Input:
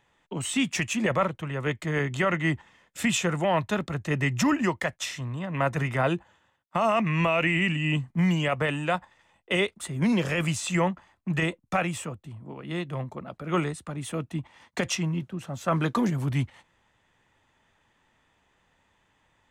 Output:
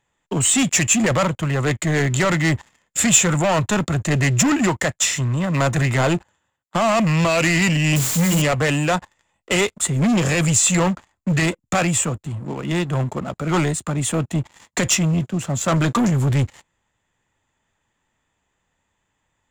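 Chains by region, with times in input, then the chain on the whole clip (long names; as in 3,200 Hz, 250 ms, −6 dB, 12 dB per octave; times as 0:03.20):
0:07.96–0:08.42: mains-hum notches 60/120/180/240/300/360/420 Hz + bit-depth reduction 6 bits, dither triangular
whole clip: low-shelf EQ 170 Hz +3.5 dB; leveller curve on the samples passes 3; parametric band 7,200 Hz +14 dB 0.23 octaves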